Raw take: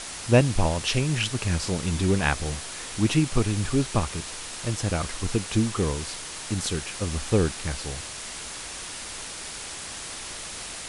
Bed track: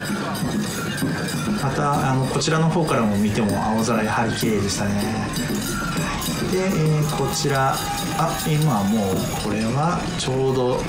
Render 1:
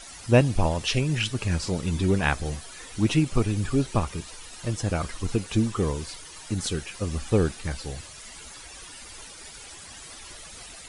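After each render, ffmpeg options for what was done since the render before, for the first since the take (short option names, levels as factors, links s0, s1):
-af "afftdn=nr=12:nf=-37"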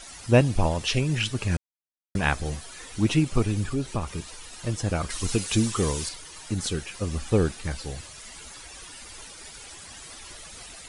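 -filter_complex "[0:a]asettb=1/sr,asplit=3[s0][s1][s2];[s0]atrim=end=3.634[s3];[s1]atrim=start=3.63:end=4.12,asetpts=PTS-STARTPTS,afade=t=in:d=0.004:c=qsin,afade=t=out:st=0.486:d=0.004:c=qsin,acompressor=threshold=0.0316:ratio=1.5:attack=3.2:release=140:knee=1:detection=peak[s4];[s2]atrim=start=4.116[s5];[s3][s4]acrossfade=d=0.004:c1=hsin:c2=qsin[s6];[s6][s5]acrossfade=d=0.004:c1=qsin:c2=hsin,asettb=1/sr,asplit=3[s7][s8][s9];[s7]atrim=end=5.104[s10];[s8]atrim=start=5.1:end=6.09,asetpts=PTS-STARTPTS,afade=t=in:d=0.004:c=qsin,afade=t=out:st=0.986:d=0.004:c=qsin,highshelf=f=2500:g=11[s11];[s9]atrim=start=6.086[s12];[s10][s11]acrossfade=d=0.004:c1=hsin:c2=qsin[s13];[s13][s12]acrossfade=d=0.004:c1=qsin:c2=hsin,asplit=3[s14][s15][s16];[s14]atrim=end=1.57,asetpts=PTS-STARTPTS,afade=t=out:st=1.566:d=0.004:c=hsin[s17];[s15]atrim=start=1.57:end=2.15,asetpts=PTS-STARTPTS,volume=0[s18];[s16]atrim=start=2.15,asetpts=PTS-STARTPTS,afade=t=in:d=0.004:c=hsin[s19];[s17][s18][s19]concat=n=3:v=0:a=1"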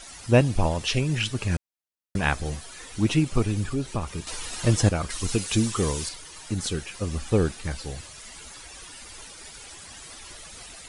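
-filter_complex "[0:a]asplit=3[s0][s1][s2];[s0]atrim=end=4.272[s3];[s1]atrim=start=4.268:end=4.892,asetpts=PTS-STARTPTS,volume=2.51[s4];[s2]atrim=start=4.888[s5];[s3][s4]acrossfade=d=0.004:c1=hsin:c2=hsin[s6];[s6][s5]acrossfade=d=0.004:c1=hsin:c2=hsin"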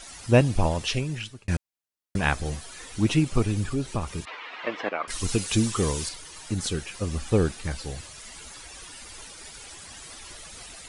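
-filter_complex "[0:a]asettb=1/sr,asplit=3[s0][s1][s2];[s0]atrim=end=4.254[s3];[s1]atrim=start=4.25:end=5.08,asetpts=PTS-STARTPTS,afade=t=in:d=0.004:c=qsin,afade=t=out:st=0.826:d=0.004:c=qsin,highpass=f=330:w=0.5412,highpass=f=330:w=1.3066,equalizer=f=340:t=q:w=4:g=-6,equalizer=f=490:t=q:w=4:g=-3,equalizer=f=1100:t=q:w=4:g=5,equalizer=f=2100:t=q:w=4:g=6,lowpass=f=3000:w=0.5412,lowpass=f=3000:w=1.3066[s4];[s2]atrim=start=5.076[s5];[s3][s4]acrossfade=d=0.004:c1=hsin:c2=qsin[s6];[s6][s5]acrossfade=d=0.004:c1=qsin:c2=hsin,asplit=2[s7][s8];[s7]atrim=end=1.48,asetpts=PTS-STARTPTS,afade=t=out:st=0.78:d=0.7[s9];[s8]atrim=start=1.48,asetpts=PTS-STARTPTS,afade=t=in:d=0.004:c=hsin[s10];[s9][s10]concat=n=2:v=0:a=1"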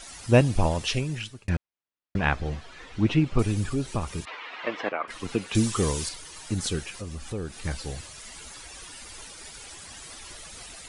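-filter_complex "[0:a]asettb=1/sr,asplit=3[s0][s1][s2];[s0]atrim=end=1.494[s3];[s1]atrim=start=1.49:end=3.39,asetpts=PTS-STARTPTS,afade=t=in:d=0.004:c=qsin,afade=t=out:st=1.896:d=0.004:c=qsin,lowpass=3200[s4];[s2]atrim=start=3.386[s5];[s3][s4]acrossfade=d=0.004:c1=hsin:c2=qsin[s6];[s6][s5]acrossfade=d=0.004:c1=qsin:c2=hsin,asettb=1/sr,asplit=3[s7][s8][s9];[s7]atrim=end=4.924[s10];[s8]atrim=start=4.92:end=5.55,asetpts=PTS-STARTPTS,afade=t=in:d=0.004:c=qsin,afade=t=out:st=0.626:d=0.004:c=qsin,acrossover=split=150 3200:gain=0.2 1 0.158[s11][s12][s13];[s11][s12][s13]amix=inputs=3:normalize=0[s14];[s9]atrim=start=5.546[s15];[s10][s14]acrossfade=d=0.004:c1=hsin:c2=qsin[s16];[s16][s15]acrossfade=d=0.004:c1=qsin:c2=hsin,asettb=1/sr,asplit=3[s17][s18][s19];[s17]atrim=end=6.904[s20];[s18]atrim=start=6.9:end=7.62,asetpts=PTS-STARTPTS,afade=t=in:d=0.004:c=qsin,afade=t=out:st=0.716:d=0.004:c=qsin,acompressor=threshold=0.0141:ratio=2:attack=3.2:release=140:knee=1:detection=peak[s21];[s19]atrim=start=7.616[s22];[s20][s21]acrossfade=d=0.004:c1=hsin:c2=qsin[s23];[s23][s22]acrossfade=d=0.004:c1=qsin:c2=hsin"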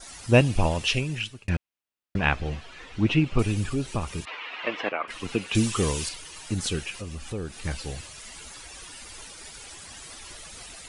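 -af "adynamicequalizer=threshold=0.00355:dfrequency=2700:dqfactor=2.9:tfrequency=2700:tqfactor=2.9:attack=5:release=100:ratio=0.375:range=3.5:mode=boostabove:tftype=bell"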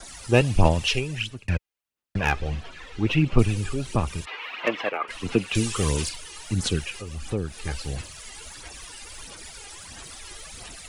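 -filter_complex "[0:a]aphaser=in_gain=1:out_gain=1:delay=2.5:decay=0.48:speed=1.5:type=sinusoidal,acrossover=split=100|940|3200[s0][s1][s2][s3];[s2]asoftclip=type=hard:threshold=0.0944[s4];[s0][s1][s4][s3]amix=inputs=4:normalize=0"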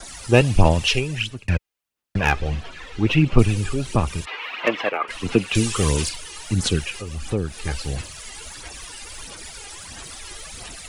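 -af "volume=1.58,alimiter=limit=0.891:level=0:latency=1"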